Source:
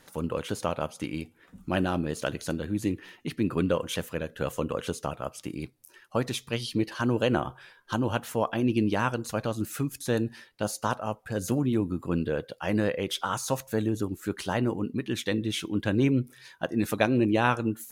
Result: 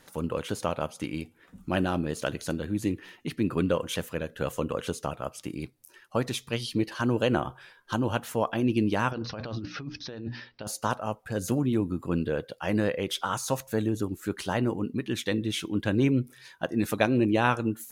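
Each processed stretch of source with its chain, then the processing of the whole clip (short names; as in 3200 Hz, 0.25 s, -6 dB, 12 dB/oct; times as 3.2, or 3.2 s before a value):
9.11–10.67 notches 60/120/180/240/300 Hz + negative-ratio compressor -35 dBFS + steep low-pass 5700 Hz 96 dB/oct
whole clip: dry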